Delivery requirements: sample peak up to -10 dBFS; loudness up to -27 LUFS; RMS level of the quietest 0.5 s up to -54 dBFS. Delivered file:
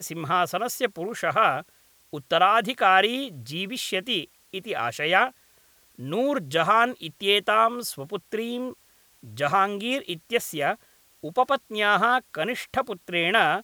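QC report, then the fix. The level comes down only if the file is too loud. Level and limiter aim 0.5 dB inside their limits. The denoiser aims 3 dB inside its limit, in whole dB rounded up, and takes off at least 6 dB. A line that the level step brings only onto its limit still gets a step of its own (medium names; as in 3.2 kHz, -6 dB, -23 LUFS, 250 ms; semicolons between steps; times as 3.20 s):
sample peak -5.0 dBFS: fail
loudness -24.0 LUFS: fail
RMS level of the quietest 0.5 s -59 dBFS: pass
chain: trim -3.5 dB; peak limiter -10.5 dBFS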